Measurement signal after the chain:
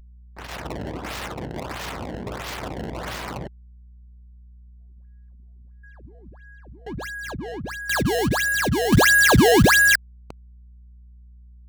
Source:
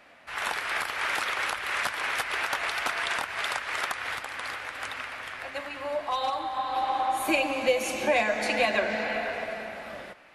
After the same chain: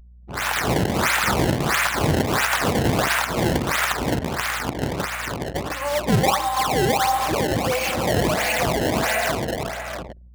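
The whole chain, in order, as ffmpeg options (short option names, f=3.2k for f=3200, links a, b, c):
-filter_complex "[0:a]alimiter=limit=-22dB:level=0:latency=1:release=11,acrossover=split=530 7900:gain=0.2 1 0.158[a][b][c];[a][b][c]amix=inputs=3:normalize=0,dynaudnorm=f=290:g=3:m=8dB,acrusher=samples=21:mix=1:aa=0.000001:lfo=1:lforange=33.6:lforate=1.5,highpass=96,acrusher=bits=5:mode=log:mix=0:aa=0.000001,aeval=exprs='val(0)+0.00398*(sin(2*PI*60*n/s)+sin(2*PI*2*60*n/s)/2+sin(2*PI*3*60*n/s)/3+sin(2*PI*4*60*n/s)/4+sin(2*PI*5*60*n/s)/5)':c=same,anlmdn=3.98,lowshelf=f=140:g=9.5,volume=2dB"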